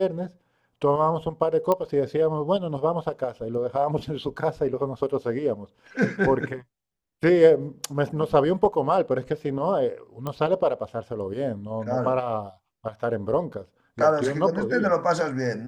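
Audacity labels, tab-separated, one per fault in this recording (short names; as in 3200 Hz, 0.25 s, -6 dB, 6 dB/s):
1.720000	1.720000	pop -11 dBFS
10.270000	10.270000	pop -17 dBFS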